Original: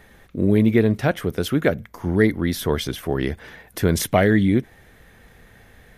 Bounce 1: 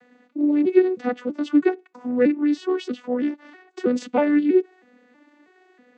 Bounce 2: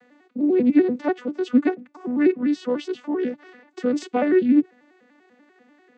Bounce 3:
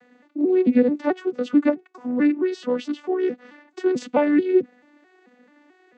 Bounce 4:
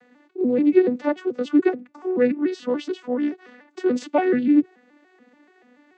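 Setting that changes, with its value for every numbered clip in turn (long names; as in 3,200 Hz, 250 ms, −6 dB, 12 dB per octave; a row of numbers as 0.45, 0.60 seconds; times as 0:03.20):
vocoder with an arpeggio as carrier, a note every: 321, 98, 219, 144 milliseconds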